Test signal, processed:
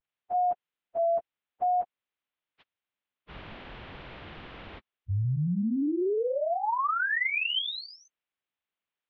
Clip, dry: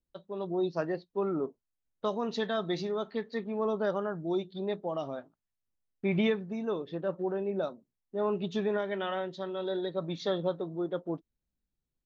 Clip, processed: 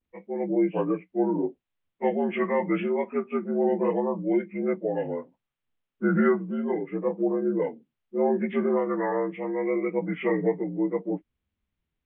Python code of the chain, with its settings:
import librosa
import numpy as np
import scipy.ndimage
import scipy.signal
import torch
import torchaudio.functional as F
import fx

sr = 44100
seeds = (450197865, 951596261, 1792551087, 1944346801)

y = fx.partial_stretch(x, sr, pct=79)
y = fx.vibrato(y, sr, rate_hz=0.74, depth_cents=63.0)
y = scipy.signal.sosfilt(scipy.signal.butter(6, 3400.0, 'lowpass', fs=sr, output='sos'), y)
y = y * 10.0 ** (7.5 / 20.0)